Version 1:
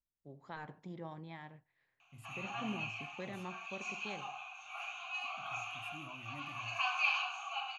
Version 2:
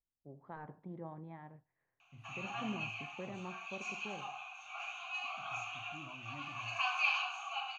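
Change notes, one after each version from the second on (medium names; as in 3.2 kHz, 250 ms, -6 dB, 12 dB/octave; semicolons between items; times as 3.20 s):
first voice: add low-pass 1.2 kHz 12 dB/octave; second voice: add distance through air 370 m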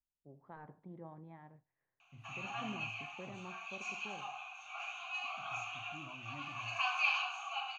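first voice -4.0 dB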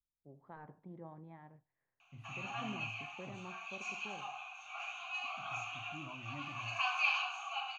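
second voice +3.0 dB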